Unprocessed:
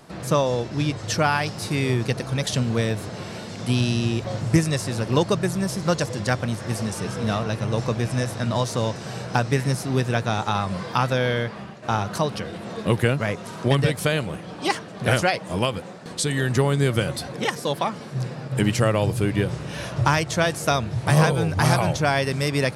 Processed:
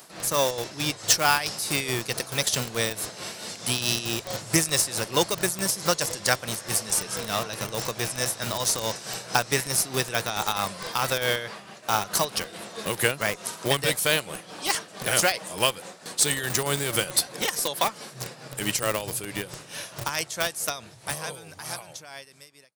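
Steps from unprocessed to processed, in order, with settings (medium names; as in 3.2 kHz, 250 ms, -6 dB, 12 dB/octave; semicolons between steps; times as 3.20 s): fade out at the end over 5.20 s; dynamic bell 240 Hz, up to -6 dB, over -43 dBFS, Q 7.1; tremolo 4.6 Hz, depth 59%; in parallel at -5.5 dB: Schmitt trigger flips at -23.5 dBFS; on the sum: RIAA curve recording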